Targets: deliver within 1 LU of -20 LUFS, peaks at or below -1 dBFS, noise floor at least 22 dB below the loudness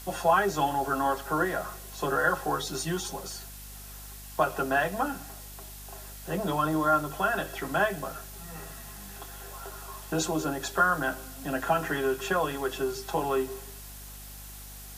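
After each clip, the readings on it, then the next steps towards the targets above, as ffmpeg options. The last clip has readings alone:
hum 50 Hz; highest harmonic 250 Hz; hum level -45 dBFS; noise floor -44 dBFS; noise floor target -51 dBFS; loudness -28.5 LUFS; peak level -10.0 dBFS; loudness target -20.0 LUFS
-> -af "bandreject=f=50:t=h:w=4,bandreject=f=100:t=h:w=4,bandreject=f=150:t=h:w=4,bandreject=f=200:t=h:w=4,bandreject=f=250:t=h:w=4"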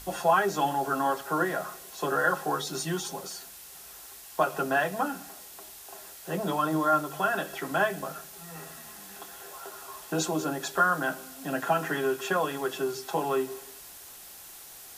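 hum not found; noise floor -47 dBFS; noise floor target -51 dBFS
-> -af "afftdn=nr=6:nf=-47"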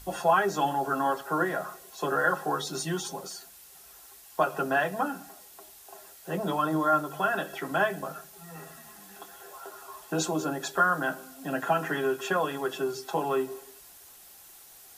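noise floor -52 dBFS; loudness -28.5 LUFS; peak level -10.0 dBFS; loudness target -20.0 LUFS
-> -af "volume=2.66"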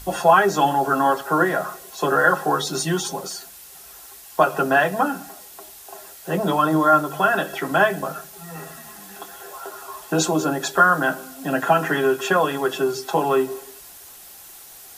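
loudness -20.0 LUFS; peak level -1.5 dBFS; noise floor -43 dBFS

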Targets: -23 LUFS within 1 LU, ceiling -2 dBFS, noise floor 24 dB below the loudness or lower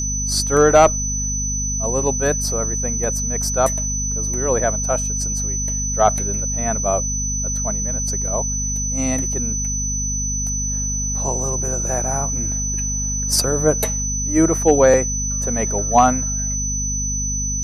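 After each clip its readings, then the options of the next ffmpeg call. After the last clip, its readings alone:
hum 50 Hz; highest harmonic 250 Hz; hum level -23 dBFS; steady tone 6 kHz; tone level -22 dBFS; loudness -19.0 LUFS; peak level -2.0 dBFS; loudness target -23.0 LUFS
-> -af "bandreject=f=50:t=h:w=6,bandreject=f=100:t=h:w=6,bandreject=f=150:t=h:w=6,bandreject=f=200:t=h:w=6,bandreject=f=250:t=h:w=6"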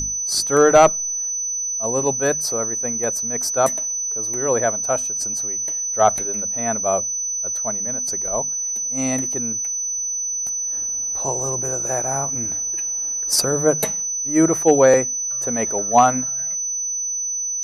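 hum not found; steady tone 6 kHz; tone level -22 dBFS
-> -af "bandreject=f=6000:w=30"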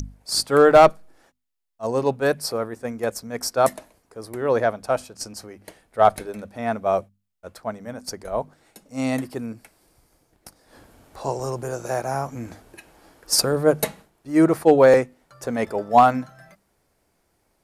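steady tone not found; loudness -21.0 LUFS; peak level -3.5 dBFS; loudness target -23.0 LUFS
-> -af "volume=0.794"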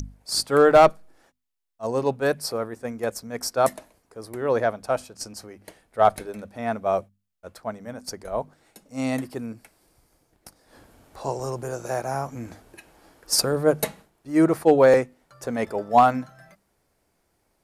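loudness -23.0 LUFS; peak level -5.5 dBFS; noise floor -71 dBFS

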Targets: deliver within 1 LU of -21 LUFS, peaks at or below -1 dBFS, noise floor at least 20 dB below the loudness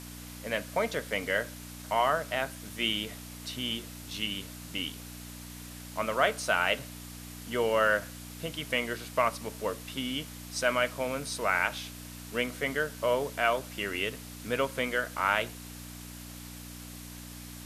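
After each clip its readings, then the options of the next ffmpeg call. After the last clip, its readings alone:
hum 60 Hz; highest harmonic 300 Hz; hum level -43 dBFS; noise floor -45 dBFS; noise floor target -51 dBFS; loudness -31.0 LUFS; peak level -9.5 dBFS; loudness target -21.0 LUFS
-> -af "bandreject=f=60:t=h:w=4,bandreject=f=120:t=h:w=4,bandreject=f=180:t=h:w=4,bandreject=f=240:t=h:w=4,bandreject=f=300:t=h:w=4"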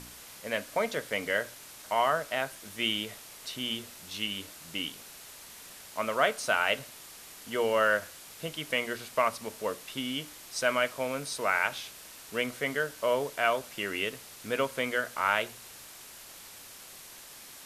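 hum not found; noise floor -49 dBFS; noise floor target -51 dBFS
-> -af "afftdn=nr=6:nf=-49"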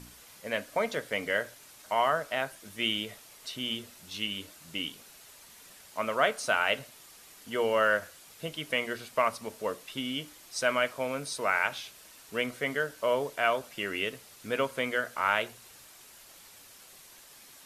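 noise floor -54 dBFS; loudness -31.0 LUFS; peak level -9.5 dBFS; loudness target -21.0 LUFS
-> -af "volume=3.16,alimiter=limit=0.891:level=0:latency=1"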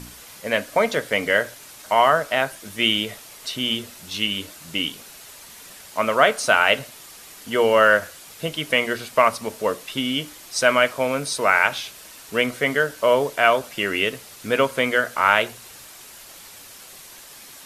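loudness -21.0 LUFS; peak level -1.0 dBFS; noise floor -44 dBFS

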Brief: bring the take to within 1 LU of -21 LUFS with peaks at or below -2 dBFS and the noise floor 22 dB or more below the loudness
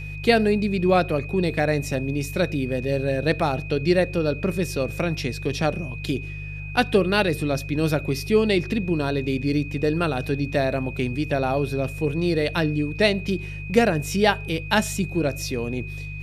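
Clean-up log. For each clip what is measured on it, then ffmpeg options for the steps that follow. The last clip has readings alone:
hum 50 Hz; highest harmonic 150 Hz; hum level -32 dBFS; steady tone 2.5 kHz; tone level -37 dBFS; loudness -23.5 LUFS; peak level -3.5 dBFS; loudness target -21.0 LUFS
-> -af "bandreject=f=50:t=h:w=4,bandreject=f=100:t=h:w=4,bandreject=f=150:t=h:w=4"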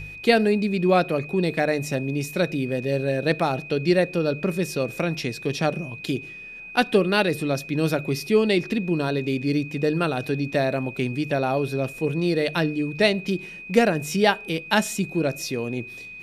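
hum not found; steady tone 2.5 kHz; tone level -37 dBFS
-> -af "bandreject=f=2500:w=30"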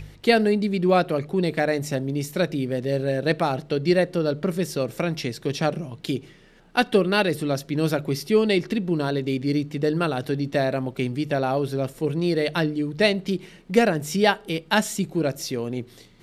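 steady tone not found; loudness -24.0 LUFS; peak level -4.0 dBFS; loudness target -21.0 LUFS
-> -af "volume=1.41,alimiter=limit=0.794:level=0:latency=1"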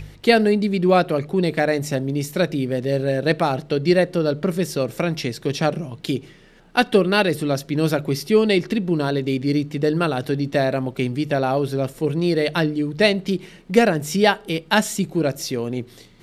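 loudness -21.0 LUFS; peak level -2.0 dBFS; noise floor -47 dBFS

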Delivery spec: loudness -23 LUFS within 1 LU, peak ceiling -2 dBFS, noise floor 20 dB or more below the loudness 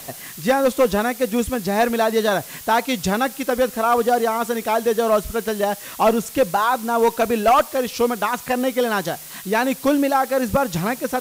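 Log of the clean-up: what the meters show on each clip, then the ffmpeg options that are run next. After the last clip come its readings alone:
noise floor -37 dBFS; noise floor target -40 dBFS; loudness -20.0 LUFS; peak level -8.5 dBFS; loudness target -23.0 LUFS
-> -af "afftdn=nr=6:nf=-37"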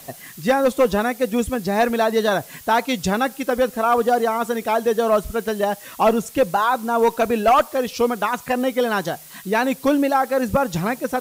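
noise floor -42 dBFS; loudness -20.5 LUFS; peak level -8.5 dBFS; loudness target -23.0 LUFS
-> -af "volume=0.75"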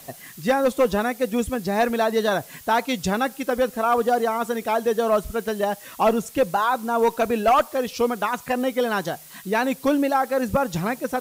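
loudness -23.0 LUFS; peak level -11.0 dBFS; noise floor -44 dBFS

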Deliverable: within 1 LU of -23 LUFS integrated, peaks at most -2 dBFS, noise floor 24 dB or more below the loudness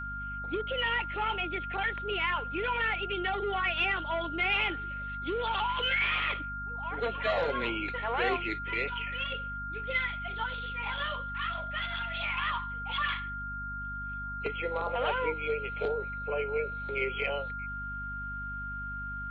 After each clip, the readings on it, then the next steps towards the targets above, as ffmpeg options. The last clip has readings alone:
hum 50 Hz; highest harmonic 250 Hz; hum level -40 dBFS; steady tone 1.4 kHz; tone level -36 dBFS; loudness -32.0 LUFS; peak level -17.0 dBFS; loudness target -23.0 LUFS
-> -af "bandreject=f=50:t=h:w=4,bandreject=f=100:t=h:w=4,bandreject=f=150:t=h:w=4,bandreject=f=200:t=h:w=4,bandreject=f=250:t=h:w=4"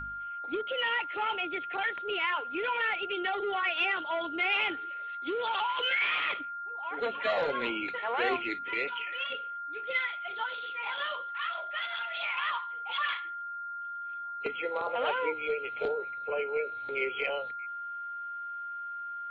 hum not found; steady tone 1.4 kHz; tone level -36 dBFS
-> -af "bandreject=f=1400:w=30"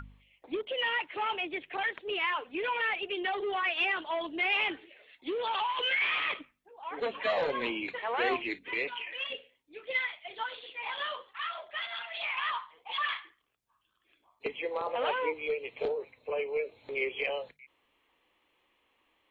steady tone not found; loudness -32.5 LUFS; peak level -17.5 dBFS; loudness target -23.0 LUFS
-> -af "volume=2.99"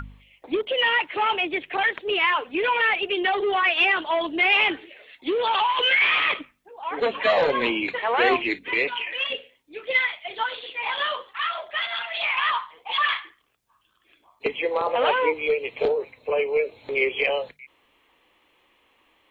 loudness -23.0 LUFS; peak level -8.0 dBFS; noise floor -65 dBFS

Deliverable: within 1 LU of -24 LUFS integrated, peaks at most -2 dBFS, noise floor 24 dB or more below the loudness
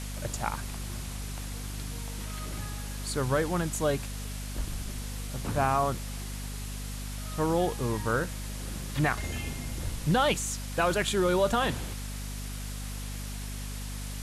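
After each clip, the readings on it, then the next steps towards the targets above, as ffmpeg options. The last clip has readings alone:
hum 50 Hz; highest harmonic 250 Hz; hum level -35 dBFS; noise floor -37 dBFS; noise floor target -56 dBFS; loudness -31.5 LUFS; peak level -13.0 dBFS; loudness target -24.0 LUFS
-> -af "bandreject=f=50:t=h:w=6,bandreject=f=100:t=h:w=6,bandreject=f=150:t=h:w=6,bandreject=f=200:t=h:w=6,bandreject=f=250:t=h:w=6"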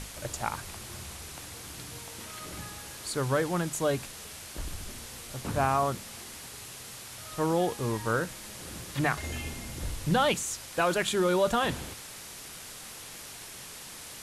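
hum not found; noise floor -45 dBFS; noise floor target -56 dBFS
-> -af "afftdn=nr=11:nf=-45"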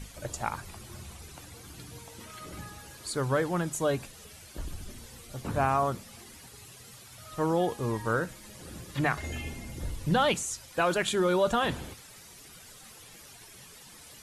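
noise floor -51 dBFS; noise floor target -54 dBFS
-> -af "afftdn=nr=6:nf=-51"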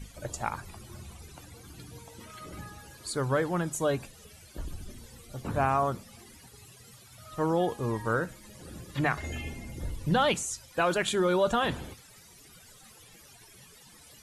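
noise floor -54 dBFS; loudness -30.0 LUFS; peak level -13.0 dBFS; loudness target -24.0 LUFS
-> -af "volume=2"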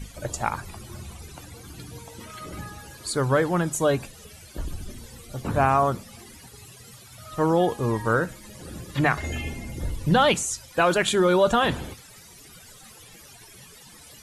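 loudness -24.0 LUFS; peak level -7.0 dBFS; noise floor -48 dBFS

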